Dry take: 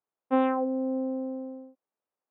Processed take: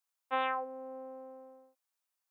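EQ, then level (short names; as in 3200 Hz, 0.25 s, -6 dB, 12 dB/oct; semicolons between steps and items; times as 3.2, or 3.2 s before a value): HPF 1000 Hz 12 dB/oct; high shelf 2800 Hz +10 dB; 0.0 dB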